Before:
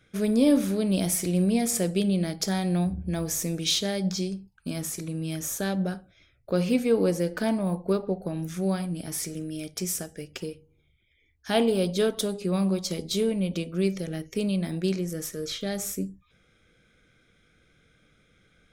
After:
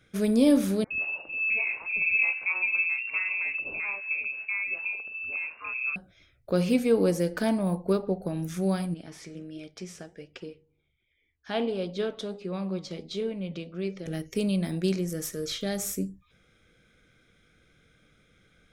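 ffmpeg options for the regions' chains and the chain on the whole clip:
-filter_complex "[0:a]asettb=1/sr,asplit=3[a][b][c];[a]atrim=end=0.844[d];[b]atrim=start=0.84:end=5.96,asetpts=PTS-STARTPTS,afade=t=in:d=0.004:c=qsin,afade=t=out:st=5.116:d=0.004:c=qsin,acrossover=split=200|1400[e][f][g];[e]adelay=60[h];[f]adelay=660[i];[h][i][g]amix=inputs=3:normalize=0,atrim=end_sample=225792,lowpass=f=2.4k:t=q:w=0.5098,lowpass=f=2.4k:t=q:w=0.6013,lowpass=f=2.4k:t=q:w=0.9,lowpass=f=2.4k:t=q:w=2.563,afreqshift=-2800[j];[c]atrim=start=5.956[k];[d][j]acrossfade=d=0.004:c1=hsin:c2=qsin[l];[l][k]acrossfade=d=0.004:c1=qsin:c2=hsin,asettb=1/sr,asplit=3[m][n][o];[m]atrim=end=8.944[p];[n]atrim=start=8.94:end=14.06,asetpts=PTS-STARTPTS,afade=t=in:d=0.004:c=qsin,afade=t=out:st=5.116:d=0.004:c=qsin,lowpass=3.8k,lowshelf=f=200:g=-6,flanger=delay=1.8:depth=5.3:regen=84:speed=1.4:shape=triangular[q];[o]atrim=start=14.056[r];[p][q]acrossfade=d=0.004:c1=hsin:c2=qsin[s];[s][r]acrossfade=d=0.004:c1=qsin:c2=hsin"

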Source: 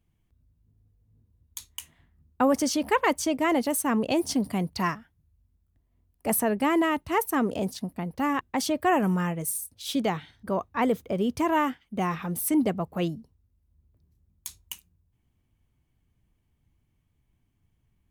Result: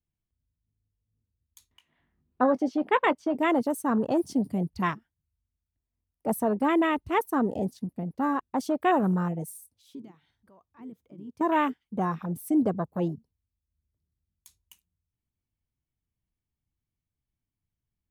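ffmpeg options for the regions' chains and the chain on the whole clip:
-filter_complex "[0:a]asettb=1/sr,asplit=3[a][b][c];[a]atrim=end=1.714[d];[b]atrim=start=1.71:end=3.35,asetpts=PTS-STARTPTS,afade=t=in:d=0.004:c=qsin,afade=t=out:st=1.636:d=0.004:c=qsin,acrossover=split=190 4000:gain=0.251 1 0.0794[e][f][g];[e][f][g]amix=inputs=3:normalize=0,acompressor=mode=upward:threshold=-43dB:ratio=2.5:attack=3.2:release=140:knee=2.83:detection=peak,asplit=2[h][i];[i]adelay=20,volume=-13dB[j];[h][j]amix=inputs=2:normalize=0,atrim=end_sample=72324[k];[c]atrim=start=3.346[l];[d][k]acrossfade=d=0.004:c1=hsin:c2=qsin[m];[m][l]acrossfade=d=0.004:c1=qsin:c2=hsin,asettb=1/sr,asplit=3[n][o][p];[n]atrim=end=9.684[q];[o]atrim=start=9.68:end=11.41,asetpts=PTS-STARTPTS,afade=t=in:d=0.004:c=qsin,afade=t=out:st=1.726:d=0.004:c=qsin,equalizer=f=930:w=2.5:g=3.5,acompressor=threshold=-49dB:ratio=2:attack=3.2:release=140:knee=1:detection=peak[r];[p]atrim=start=11.406[s];[q][r]acrossfade=d=0.004:c1=hsin:c2=qsin[t];[t][s]acrossfade=d=0.004:c1=qsin:c2=hsin,afwtdn=0.0355,adynamicequalizer=threshold=0.00631:dfrequency=3600:dqfactor=0.7:tfrequency=3600:tqfactor=0.7:attack=5:release=100:ratio=0.375:range=2.5:mode=boostabove:tftype=highshelf"

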